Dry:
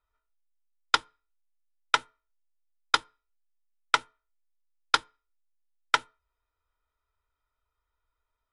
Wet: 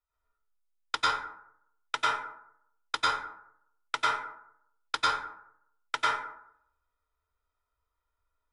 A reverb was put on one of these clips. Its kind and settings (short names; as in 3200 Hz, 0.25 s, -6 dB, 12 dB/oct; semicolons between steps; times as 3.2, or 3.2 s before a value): plate-style reverb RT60 0.72 s, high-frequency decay 0.45×, pre-delay 85 ms, DRR -8 dB; gain -9.5 dB